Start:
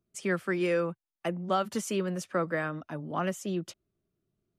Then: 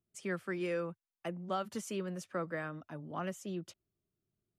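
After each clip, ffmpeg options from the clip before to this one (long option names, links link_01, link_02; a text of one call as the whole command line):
ffmpeg -i in.wav -af "equalizer=frequency=99:width_type=o:width=0.77:gain=4,volume=-8dB" out.wav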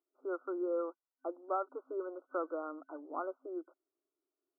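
ffmpeg -i in.wav -af "afftfilt=real='re*between(b*sr/4096,260,1500)':imag='im*between(b*sr/4096,260,1500)':win_size=4096:overlap=0.75,volume=1.5dB" out.wav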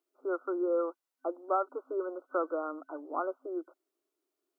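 ffmpeg -i in.wav -af "highpass=240,volume=5.5dB" out.wav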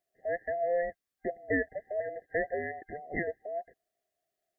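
ffmpeg -i in.wav -af "afftfilt=real='real(if(between(b,1,1008),(2*floor((b-1)/48)+1)*48-b,b),0)':imag='imag(if(between(b,1,1008),(2*floor((b-1)/48)+1)*48-b,b),0)*if(between(b,1,1008),-1,1)':win_size=2048:overlap=0.75" out.wav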